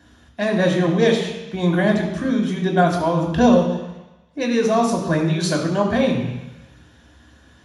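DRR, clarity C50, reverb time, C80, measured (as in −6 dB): 0.0 dB, 5.5 dB, 1.0 s, 7.0 dB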